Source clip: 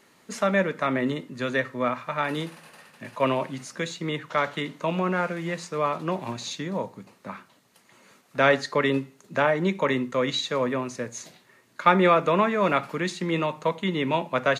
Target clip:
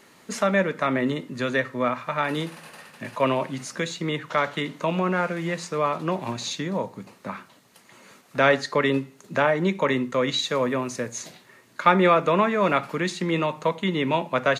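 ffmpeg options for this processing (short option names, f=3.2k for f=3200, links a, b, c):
-filter_complex "[0:a]asettb=1/sr,asplit=3[a][b][c];[a]atrim=end=10.394[d];[b]atrim=start=10.39:end=11.12,asetpts=PTS-STARTPTS,afade=t=in:d=0.004:c=qsin,afade=t=out:st=0.726:d=0.004:c=qsin,highshelf=f=9.2k:g=7.5[e];[c]atrim=start=11.116[f];[d][e]acrossfade=d=0.004:c1=hsin:c2=qsin[g];[g][f]acrossfade=d=0.004:c1=qsin:c2=hsin,asplit=2[h][i];[i]acompressor=threshold=-35dB:ratio=6,volume=-2dB[j];[h][j]amix=inputs=2:normalize=0"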